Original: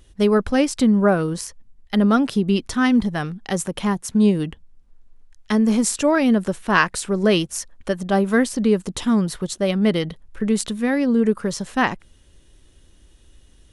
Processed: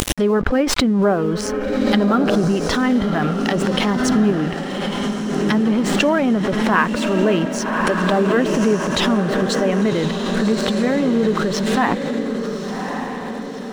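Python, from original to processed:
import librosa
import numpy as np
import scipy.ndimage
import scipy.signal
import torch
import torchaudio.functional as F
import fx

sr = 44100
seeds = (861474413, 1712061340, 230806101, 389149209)

p1 = fx.spec_quant(x, sr, step_db=15)
p2 = fx.env_lowpass_down(p1, sr, base_hz=1900.0, full_db=-18.0)
p3 = fx.low_shelf(p2, sr, hz=150.0, db=-9.5)
p4 = fx.over_compress(p3, sr, threshold_db=-31.0, ratio=-1.0)
p5 = p3 + F.gain(torch.from_numpy(p4), -1.0).numpy()
p6 = np.sign(p5) * np.maximum(np.abs(p5) - 10.0 ** (-43.0 / 20.0), 0.0)
p7 = p6 + fx.echo_diffused(p6, sr, ms=1154, feedback_pct=54, wet_db=-5.5, dry=0)
p8 = fx.pre_swell(p7, sr, db_per_s=26.0)
y = F.gain(torch.from_numpy(p8), 1.0).numpy()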